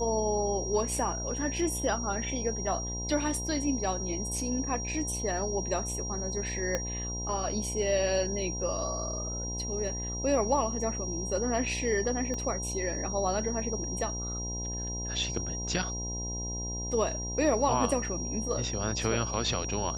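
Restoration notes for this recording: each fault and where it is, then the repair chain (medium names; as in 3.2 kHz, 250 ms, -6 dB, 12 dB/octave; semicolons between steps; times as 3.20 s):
buzz 60 Hz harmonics 17 -37 dBFS
whine 5.7 kHz -36 dBFS
6.75 s: pop -15 dBFS
12.34 s: pop -23 dBFS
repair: de-click; de-hum 60 Hz, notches 17; band-stop 5.7 kHz, Q 30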